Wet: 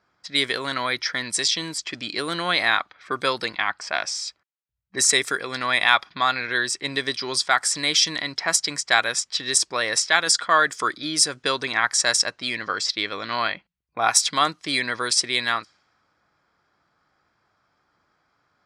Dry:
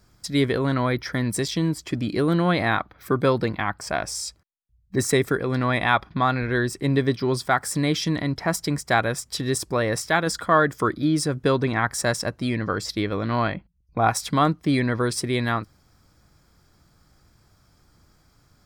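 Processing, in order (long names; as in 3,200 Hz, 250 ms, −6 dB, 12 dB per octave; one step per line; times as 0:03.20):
low-pass that shuts in the quiet parts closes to 1,300 Hz, open at −18 dBFS
meter weighting curve ITU-R 468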